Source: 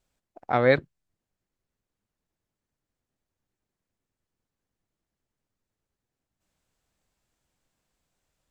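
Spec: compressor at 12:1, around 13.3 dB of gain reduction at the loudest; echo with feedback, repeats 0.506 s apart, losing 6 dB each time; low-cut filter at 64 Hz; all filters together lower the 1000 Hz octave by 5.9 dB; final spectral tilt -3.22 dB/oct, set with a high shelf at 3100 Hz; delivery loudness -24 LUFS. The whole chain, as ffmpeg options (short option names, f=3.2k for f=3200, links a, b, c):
-af "highpass=64,equalizer=f=1k:t=o:g=-9,highshelf=f=3.1k:g=-5,acompressor=threshold=-29dB:ratio=12,aecho=1:1:506|1012|1518|2024|2530|3036:0.501|0.251|0.125|0.0626|0.0313|0.0157,volume=16.5dB"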